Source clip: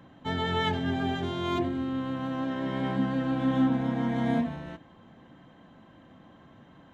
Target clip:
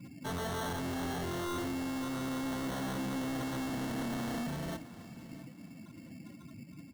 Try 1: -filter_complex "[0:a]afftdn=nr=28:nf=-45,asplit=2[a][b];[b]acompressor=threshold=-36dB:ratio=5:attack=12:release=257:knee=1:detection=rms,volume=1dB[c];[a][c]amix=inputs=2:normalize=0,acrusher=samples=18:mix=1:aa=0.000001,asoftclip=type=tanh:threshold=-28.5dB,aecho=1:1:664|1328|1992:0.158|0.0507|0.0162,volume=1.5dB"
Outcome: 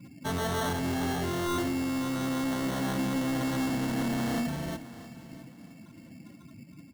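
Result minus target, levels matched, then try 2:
soft clip: distortion -4 dB
-filter_complex "[0:a]afftdn=nr=28:nf=-45,asplit=2[a][b];[b]acompressor=threshold=-36dB:ratio=5:attack=12:release=257:knee=1:detection=rms,volume=1dB[c];[a][c]amix=inputs=2:normalize=0,acrusher=samples=18:mix=1:aa=0.000001,asoftclip=type=tanh:threshold=-36.5dB,aecho=1:1:664|1328|1992:0.158|0.0507|0.0162,volume=1.5dB"

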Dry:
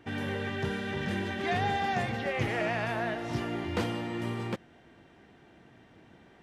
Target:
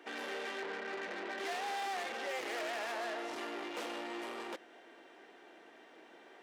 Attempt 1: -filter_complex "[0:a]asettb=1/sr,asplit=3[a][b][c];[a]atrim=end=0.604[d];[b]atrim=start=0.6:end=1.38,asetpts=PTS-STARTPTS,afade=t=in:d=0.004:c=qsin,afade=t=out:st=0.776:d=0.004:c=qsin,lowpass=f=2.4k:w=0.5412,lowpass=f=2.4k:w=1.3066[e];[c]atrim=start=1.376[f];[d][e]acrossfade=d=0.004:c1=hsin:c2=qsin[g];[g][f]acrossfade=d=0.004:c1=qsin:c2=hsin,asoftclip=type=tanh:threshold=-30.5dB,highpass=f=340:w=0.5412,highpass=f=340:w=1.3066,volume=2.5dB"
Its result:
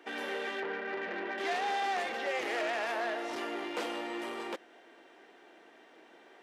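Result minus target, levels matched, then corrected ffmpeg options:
soft clip: distortion -5 dB
-filter_complex "[0:a]asettb=1/sr,asplit=3[a][b][c];[a]atrim=end=0.604[d];[b]atrim=start=0.6:end=1.38,asetpts=PTS-STARTPTS,afade=t=in:d=0.004:c=qsin,afade=t=out:st=0.776:d=0.004:c=qsin,lowpass=f=2.4k:w=0.5412,lowpass=f=2.4k:w=1.3066[e];[c]atrim=start=1.376[f];[d][e]acrossfade=d=0.004:c1=hsin:c2=qsin[g];[g][f]acrossfade=d=0.004:c1=qsin:c2=hsin,asoftclip=type=tanh:threshold=-38.5dB,highpass=f=340:w=0.5412,highpass=f=340:w=1.3066,volume=2.5dB"

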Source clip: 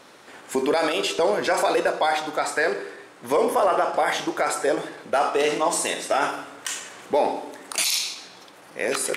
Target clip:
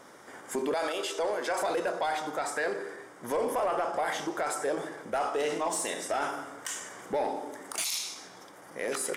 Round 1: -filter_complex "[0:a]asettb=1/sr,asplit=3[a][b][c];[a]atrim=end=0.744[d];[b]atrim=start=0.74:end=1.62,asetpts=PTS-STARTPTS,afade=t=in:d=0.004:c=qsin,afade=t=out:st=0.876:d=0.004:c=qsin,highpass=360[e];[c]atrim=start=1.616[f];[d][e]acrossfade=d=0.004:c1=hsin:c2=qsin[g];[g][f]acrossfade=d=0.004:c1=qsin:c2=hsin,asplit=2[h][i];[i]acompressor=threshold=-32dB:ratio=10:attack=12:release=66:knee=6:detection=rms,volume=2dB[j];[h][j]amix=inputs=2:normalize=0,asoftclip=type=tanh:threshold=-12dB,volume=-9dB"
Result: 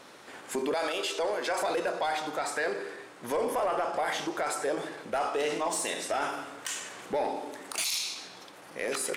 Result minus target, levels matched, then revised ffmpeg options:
4000 Hz band +2.5 dB
-filter_complex "[0:a]asettb=1/sr,asplit=3[a][b][c];[a]atrim=end=0.744[d];[b]atrim=start=0.74:end=1.62,asetpts=PTS-STARTPTS,afade=t=in:d=0.004:c=qsin,afade=t=out:st=0.876:d=0.004:c=qsin,highpass=360[e];[c]atrim=start=1.616[f];[d][e]acrossfade=d=0.004:c1=hsin:c2=qsin[g];[g][f]acrossfade=d=0.004:c1=qsin:c2=hsin,asplit=2[h][i];[i]acompressor=threshold=-32dB:ratio=10:attack=12:release=66:knee=6:detection=rms,asuperstop=centerf=3300:order=8:qfactor=2.1,volume=2dB[j];[h][j]amix=inputs=2:normalize=0,asoftclip=type=tanh:threshold=-12dB,volume=-9dB"

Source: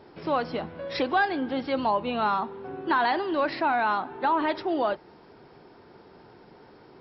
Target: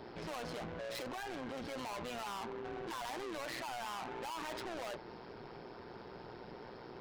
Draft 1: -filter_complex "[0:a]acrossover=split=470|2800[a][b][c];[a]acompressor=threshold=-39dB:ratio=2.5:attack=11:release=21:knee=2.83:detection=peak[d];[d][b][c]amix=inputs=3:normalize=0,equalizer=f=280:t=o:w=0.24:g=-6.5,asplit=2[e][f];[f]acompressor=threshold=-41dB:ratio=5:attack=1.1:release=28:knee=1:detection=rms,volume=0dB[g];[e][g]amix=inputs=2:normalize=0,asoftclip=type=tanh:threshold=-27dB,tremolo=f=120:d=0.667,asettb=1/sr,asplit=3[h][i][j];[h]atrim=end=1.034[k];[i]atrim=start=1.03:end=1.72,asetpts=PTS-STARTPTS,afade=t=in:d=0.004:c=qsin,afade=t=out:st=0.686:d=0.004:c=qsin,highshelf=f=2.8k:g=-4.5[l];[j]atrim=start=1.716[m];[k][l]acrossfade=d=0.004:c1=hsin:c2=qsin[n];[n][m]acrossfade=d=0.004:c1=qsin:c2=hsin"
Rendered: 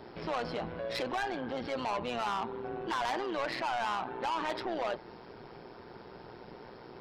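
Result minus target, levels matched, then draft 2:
compressor: peak gain reduction +9.5 dB; soft clip: distortion -6 dB
-filter_complex "[0:a]acrossover=split=470|2800[a][b][c];[a]acompressor=threshold=-39dB:ratio=2.5:attack=11:release=21:knee=2.83:detection=peak[d];[d][b][c]amix=inputs=3:normalize=0,equalizer=f=280:t=o:w=0.24:g=-6.5,asplit=2[e][f];[f]acompressor=threshold=-29dB:ratio=5:attack=1.1:release=28:knee=1:detection=rms,volume=0dB[g];[e][g]amix=inputs=2:normalize=0,asoftclip=type=tanh:threshold=-38.5dB,tremolo=f=120:d=0.667,asettb=1/sr,asplit=3[h][i][j];[h]atrim=end=1.034[k];[i]atrim=start=1.03:end=1.72,asetpts=PTS-STARTPTS,afade=t=in:d=0.004:c=qsin,afade=t=out:st=0.686:d=0.004:c=qsin,highshelf=f=2.8k:g=-4.5[l];[j]atrim=start=1.716[m];[k][l]acrossfade=d=0.004:c1=hsin:c2=qsin[n];[n][m]acrossfade=d=0.004:c1=qsin:c2=hsin"

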